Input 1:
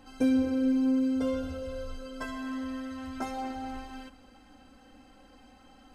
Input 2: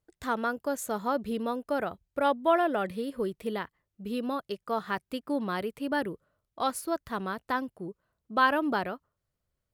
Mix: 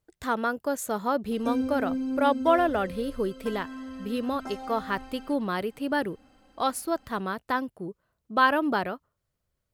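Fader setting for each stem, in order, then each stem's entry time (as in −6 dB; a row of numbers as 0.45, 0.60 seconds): −4.0, +2.5 decibels; 1.25, 0.00 seconds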